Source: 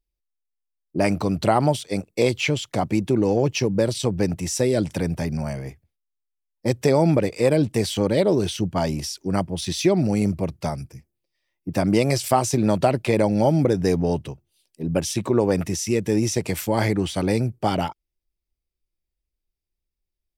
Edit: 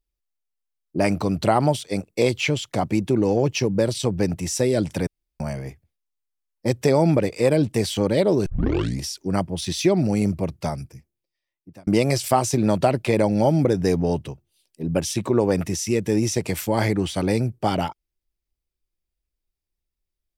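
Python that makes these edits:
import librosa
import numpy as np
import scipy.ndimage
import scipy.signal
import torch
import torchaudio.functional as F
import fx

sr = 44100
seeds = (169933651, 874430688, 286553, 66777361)

y = fx.edit(x, sr, fx.room_tone_fill(start_s=5.07, length_s=0.33),
    fx.tape_start(start_s=8.46, length_s=0.57),
    fx.fade_out_span(start_s=10.78, length_s=1.09), tone=tone)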